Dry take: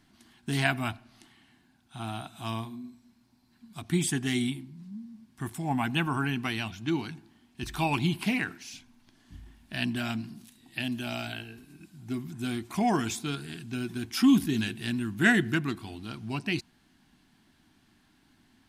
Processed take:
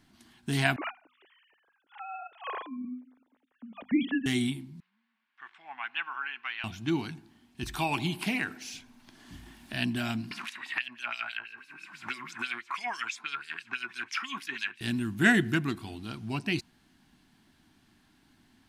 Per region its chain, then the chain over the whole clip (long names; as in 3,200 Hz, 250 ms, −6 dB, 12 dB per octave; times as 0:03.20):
0:00.76–0:04.26: three sine waves on the formant tracks + mains-hum notches 50/100/150/200/250 Hz
0:04.80–0:06.64: flat-topped band-pass 1,900 Hz, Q 1 + high-frequency loss of the air 110 metres
0:07.75–0:09.74: low-shelf EQ 280 Hz −6.5 dB + delay with a band-pass on its return 67 ms, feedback 60%, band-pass 450 Hz, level −16.5 dB + multiband upward and downward compressor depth 40%
0:10.31–0:14.81: flat-topped bell 1,600 Hz +11 dB + auto-filter band-pass sine 6.1 Hz 930–5,700 Hz + multiband upward and downward compressor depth 100%
whole clip: no processing